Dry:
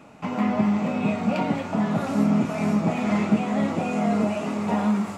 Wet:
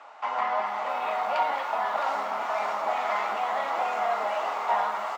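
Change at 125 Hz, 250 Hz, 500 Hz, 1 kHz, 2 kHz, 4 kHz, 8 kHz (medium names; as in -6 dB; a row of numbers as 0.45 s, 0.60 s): under -35 dB, -30.0 dB, -2.5 dB, +5.0 dB, +1.5 dB, +0.5 dB, no reading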